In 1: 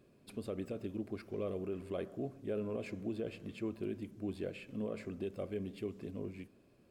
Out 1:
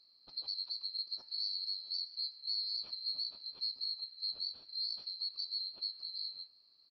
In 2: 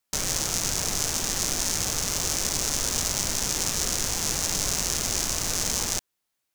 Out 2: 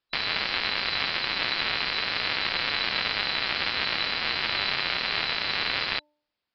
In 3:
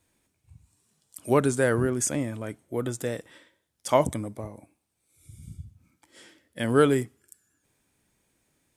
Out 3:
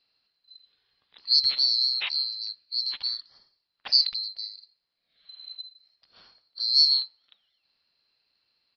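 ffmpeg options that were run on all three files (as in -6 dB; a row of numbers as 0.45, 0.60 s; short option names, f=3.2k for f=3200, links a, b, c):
-af "afftfilt=real='real(if(lt(b,736),b+184*(1-2*mod(floor(b/184),2)),b),0)':imag='imag(if(lt(b,736),b+184*(1-2*mod(floor(b/184),2)),b),0)':win_size=2048:overlap=0.75,bandreject=f=298.1:t=h:w=4,bandreject=f=596.2:t=h:w=4,bandreject=f=894.3:t=h:w=4,aresample=11025,aresample=44100"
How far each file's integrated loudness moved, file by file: +4.0, -1.0, +3.5 LU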